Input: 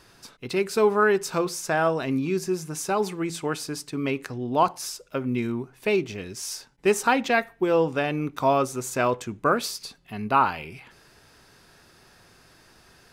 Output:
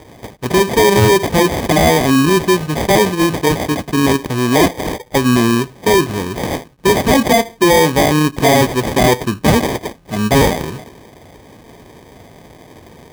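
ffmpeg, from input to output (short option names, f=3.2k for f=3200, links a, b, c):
-af "apsyclip=20.5dB,acrusher=samples=32:mix=1:aa=0.000001,highpass=41,volume=-5.5dB"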